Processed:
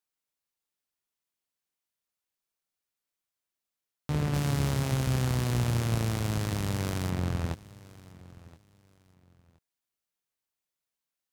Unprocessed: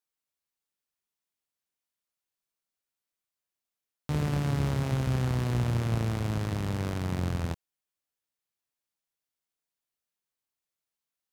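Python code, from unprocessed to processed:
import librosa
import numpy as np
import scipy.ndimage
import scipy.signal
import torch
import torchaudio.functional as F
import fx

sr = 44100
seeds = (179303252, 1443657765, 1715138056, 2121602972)

y = fx.high_shelf(x, sr, hz=4000.0, db=9.5, at=(4.34, 7.1))
y = fx.echo_feedback(y, sr, ms=1022, feedback_pct=26, wet_db=-20.5)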